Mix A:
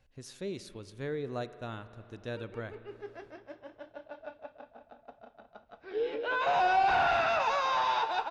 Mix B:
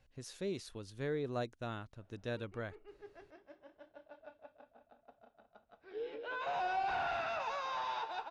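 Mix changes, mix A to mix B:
background -9.5 dB; reverb: off

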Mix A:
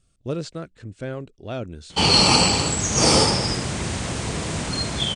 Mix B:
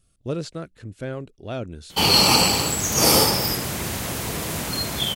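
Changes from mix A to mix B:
background: add bass shelf 220 Hz -4.5 dB; master: remove steep low-pass 9.3 kHz 72 dB/octave

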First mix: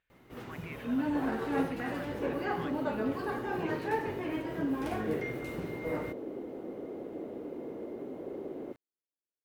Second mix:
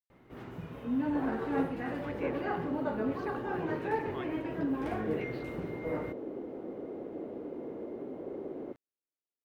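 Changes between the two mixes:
speech: entry +1.55 s; first sound: add treble shelf 3.4 kHz -11.5 dB

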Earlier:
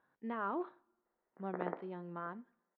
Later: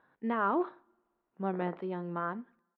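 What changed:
speech +8.5 dB; background -6.0 dB

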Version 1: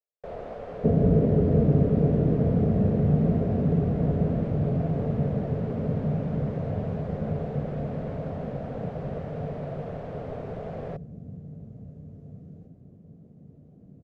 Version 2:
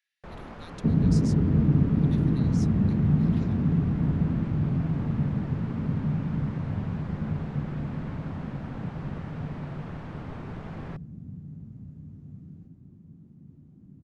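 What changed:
speech: unmuted; first sound +3.0 dB; master: add high-order bell 550 Hz -15 dB 1 oct

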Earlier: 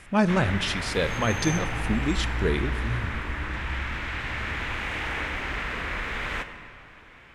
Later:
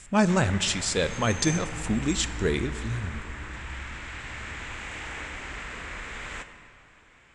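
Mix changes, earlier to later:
background -7.0 dB; master: add resonant low-pass 7.6 kHz, resonance Q 6

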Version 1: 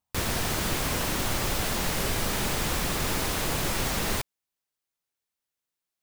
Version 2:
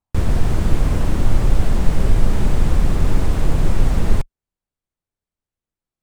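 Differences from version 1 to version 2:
background: add tilt EQ -4 dB/octave; master: add peaking EQ 8.3 kHz +5.5 dB 0.64 oct

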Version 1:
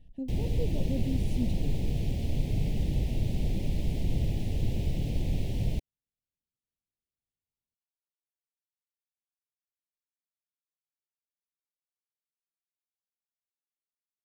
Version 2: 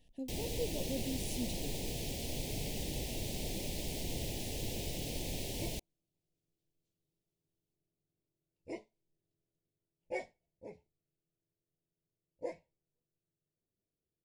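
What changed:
second sound: unmuted; master: add tone controls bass -14 dB, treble +11 dB

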